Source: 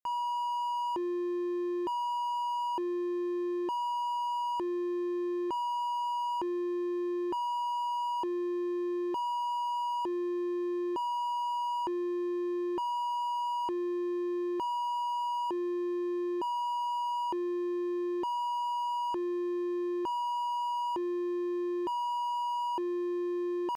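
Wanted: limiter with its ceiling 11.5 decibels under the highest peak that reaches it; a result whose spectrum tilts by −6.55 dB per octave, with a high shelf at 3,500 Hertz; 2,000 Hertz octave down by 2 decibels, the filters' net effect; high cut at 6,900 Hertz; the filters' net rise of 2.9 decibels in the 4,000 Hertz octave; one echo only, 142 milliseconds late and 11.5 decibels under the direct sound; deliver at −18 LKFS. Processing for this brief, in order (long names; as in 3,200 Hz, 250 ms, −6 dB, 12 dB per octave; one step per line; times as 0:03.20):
low-pass filter 6,900 Hz
parametric band 2,000 Hz −5 dB
high-shelf EQ 3,500 Hz +5.5 dB
parametric band 4,000 Hz +5 dB
brickwall limiter −39 dBFS
single-tap delay 142 ms −11.5 dB
level +24.5 dB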